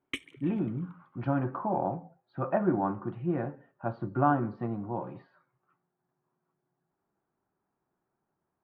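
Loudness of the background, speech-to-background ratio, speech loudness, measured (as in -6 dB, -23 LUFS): -40.0 LUFS, 8.0 dB, -32.0 LUFS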